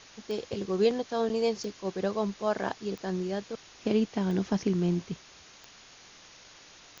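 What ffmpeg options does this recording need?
ffmpeg -i in.wav -af "adeclick=threshold=4,afwtdn=0.004" out.wav

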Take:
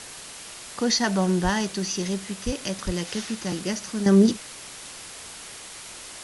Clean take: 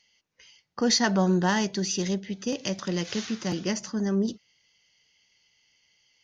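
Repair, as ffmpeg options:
ffmpeg -i in.wav -filter_complex "[0:a]asplit=3[link_01][link_02][link_03];[link_01]afade=type=out:start_time=1.43:duration=0.02[link_04];[link_02]highpass=frequency=140:width=0.5412,highpass=frequency=140:width=1.3066,afade=type=in:start_time=1.43:duration=0.02,afade=type=out:start_time=1.55:duration=0.02[link_05];[link_03]afade=type=in:start_time=1.55:duration=0.02[link_06];[link_04][link_05][link_06]amix=inputs=3:normalize=0,asplit=3[link_07][link_08][link_09];[link_07]afade=type=out:start_time=2.45:duration=0.02[link_10];[link_08]highpass=frequency=140:width=0.5412,highpass=frequency=140:width=1.3066,afade=type=in:start_time=2.45:duration=0.02,afade=type=out:start_time=2.57:duration=0.02[link_11];[link_09]afade=type=in:start_time=2.57:duration=0.02[link_12];[link_10][link_11][link_12]amix=inputs=3:normalize=0,asplit=3[link_13][link_14][link_15];[link_13]afade=type=out:start_time=2.85:duration=0.02[link_16];[link_14]highpass=frequency=140:width=0.5412,highpass=frequency=140:width=1.3066,afade=type=in:start_time=2.85:duration=0.02,afade=type=out:start_time=2.97:duration=0.02[link_17];[link_15]afade=type=in:start_time=2.97:duration=0.02[link_18];[link_16][link_17][link_18]amix=inputs=3:normalize=0,afwtdn=0.013,asetnsamples=nb_out_samples=441:pad=0,asendcmd='4.06 volume volume -9.5dB',volume=0dB" out.wav

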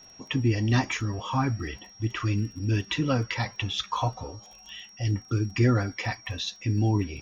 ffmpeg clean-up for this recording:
ffmpeg -i in.wav -af "adeclick=threshold=4,bandreject=frequency=5600:width=30" out.wav

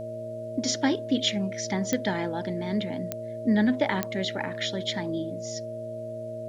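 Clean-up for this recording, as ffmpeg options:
ffmpeg -i in.wav -af "adeclick=threshold=4,bandreject=frequency=114.6:width_type=h:width=4,bandreject=frequency=229.2:width_type=h:width=4,bandreject=frequency=343.8:width_type=h:width=4,bandreject=frequency=458.4:width_type=h:width=4,bandreject=frequency=573:width_type=h:width=4,bandreject=frequency=630:width=30,agate=range=-21dB:threshold=-28dB" out.wav

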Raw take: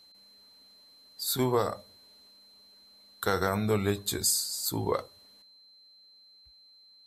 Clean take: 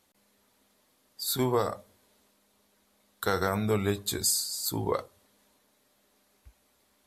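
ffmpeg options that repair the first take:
ffmpeg -i in.wav -af "bandreject=frequency=4100:width=30,asetnsamples=nb_out_samples=441:pad=0,asendcmd='5.42 volume volume 11.5dB',volume=0dB" out.wav

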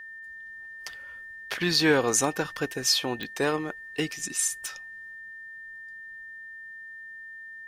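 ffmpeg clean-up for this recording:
ffmpeg -i in.wav -af "adeclick=threshold=4,bandreject=frequency=1800:width=30" out.wav

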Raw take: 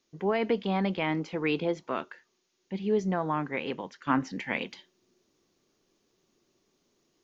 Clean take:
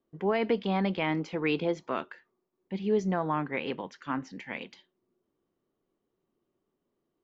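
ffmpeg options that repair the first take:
ffmpeg -i in.wav -af "agate=range=-21dB:threshold=-66dB,asetnsamples=nb_out_samples=441:pad=0,asendcmd='4.07 volume volume -6.5dB',volume=0dB" out.wav

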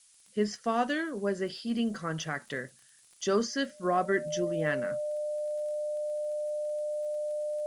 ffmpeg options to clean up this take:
ffmpeg -i in.wav -af "adeclick=threshold=4,bandreject=frequency=600:width=30,afftdn=noise_reduction=16:noise_floor=-60" out.wav

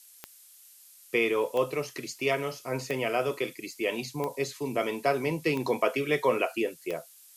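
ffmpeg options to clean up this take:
ffmpeg -i in.wav -af "adeclick=threshold=4,afftdn=noise_reduction=20:noise_floor=-54" out.wav

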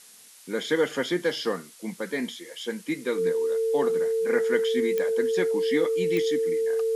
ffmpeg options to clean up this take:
ffmpeg -i in.wav -af "adeclick=threshold=4,bandreject=frequency=450:width=30,afftdn=noise_reduction=24:noise_floor=-48" out.wav

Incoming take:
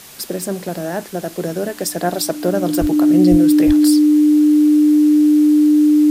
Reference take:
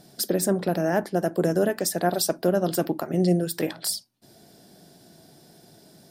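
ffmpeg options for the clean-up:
ffmpeg -i in.wav -filter_complex "[0:a]bandreject=frequency=300:width=30,asplit=3[link_01][link_02][link_03];[link_01]afade=type=out:start_time=2.8:duration=0.02[link_04];[link_02]highpass=frequency=140:width=0.5412,highpass=frequency=140:width=1.3066,afade=type=in:start_time=2.8:duration=0.02,afade=type=out:start_time=2.92:duration=0.02[link_05];[link_03]afade=type=in:start_time=2.92:duration=0.02[link_06];[link_04][link_05][link_06]amix=inputs=3:normalize=0,asplit=3[link_07][link_08][link_09];[link_07]afade=type=out:start_time=3.3:duration=0.02[link_10];[link_08]highpass=frequency=140:width=0.5412,highpass=frequency=140:width=1.3066,afade=type=in:start_time=3.3:duration=0.02,afade=type=out:start_time=3.42:duration=0.02[link_11];[link_09]afade=type=in:start_time=3.42:duration=0.02[link_12];[link_10][link_11][link_12]amix=inputs=3:normalize=0,asplit=3[link_13][link_14][link_15];[link_13]afade=type=out:start_time=3.66:duration=0.02[link_16];[link_14]highpass=frequency=140:width=0.5412,highpass=frequency=140:width=1.3066,afade=type=in:start_time=3.66:duration=0.02,afade=type=out:start_time=3.78:duration=0.02[link_17];[link_15]afade=type=in:start_time=3.78:duration=0.02[link_18];[link_16][link_17][link_18]amix=inputs=3:normalize=0,afwtdn=0.013,asetnsamples=nb_out_samples=441:pad=0,asendcmd='1.79 volume volume -4dB',volume=0dB" out.wav

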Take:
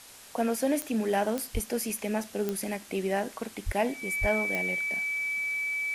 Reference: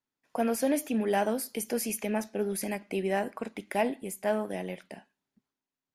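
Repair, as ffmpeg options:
ffmpeg -i in.wav -filter_complex "[0:a]adeclick=threshold=4,bandreject=frequency=2300:width=30,asplit=3[link_01][link_02][link_03];[link_01]afade=type=out:start_time=1.53:duration=0.02[link_04];[link_02]highpass=frequency=140:width=0.5412,highpass=frequency=140:width=1.3066,afade=type=in:start_time=1.53:duration=0.02,afade=type=out:start_time=1.65:duration=0.02[link_05];[link_03]afade=type=in:start_time=1.65:duration=0.02[link_06];[link_04][link_05][link_06]amix=inputs=3:normalize=0,asplit=3[link_07][link_08][link_09];[link_07]afade=type=out:start_time=3.65:duration=0.02[link_10];[link_08]highpass=frequency=140:width=0.5412,highpass=frequency=140:width=1.3066,afade=type=in:start_time=3.65:duration=0.02,afade=type=out:start_time=3.77:duration=0.02[link_11];[link_09]afade=type=in:start_time=3.77:duration=0.02[link_12];[link_10][link_11][link_12]amix=inputs=3:normalize=0,asplit=3[link_13][link_14][link_15];[link_13]afade=type=out:start_time=4.2:duration=0.02[link_16];[link_14]highpass=frequency=140:width=0.5412,highpass=frequency=140:width=1.3066,afade=type=in:start_time=4.2:duration=0.02,afade=type=out:start_time=4.32:duration=0.02[link_17];[link_15]afade=type=in:start_time=4.32:duration=0.02[link_18];[link_16][link_17][link_18]amix=inputs=3:normalize=0,afwtdn=0.004" out.wav

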